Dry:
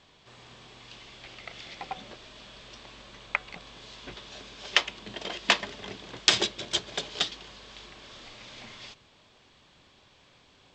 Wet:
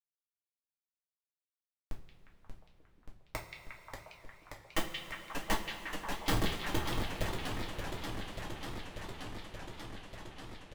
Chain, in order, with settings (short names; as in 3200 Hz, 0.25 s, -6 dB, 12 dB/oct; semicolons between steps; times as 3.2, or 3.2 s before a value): tilt -2.5 dB/oct; comb 1 ms, depth 62%; Schmitt trigger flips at -20.5 dBFS; delay with a stepping band-pass 0.178 s, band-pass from 3000 Hz, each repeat -0.7 oct, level -1 dB; two-slope reverb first 0.29 s, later 4.4 s, from -18 dB, DRR -2 dB; warbling echo 0.585 s, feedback 80%, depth 218 cents, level -7 dB; gain +4.5 dB